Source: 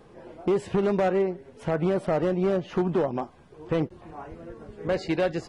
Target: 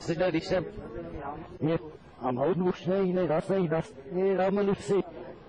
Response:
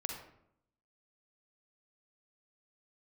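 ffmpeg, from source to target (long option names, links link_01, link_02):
-af "areverse,acompressor=threshold=-28dB:ratio=3,volume=3dB" -ar 22050 -c:a wmav2 -b:a 32k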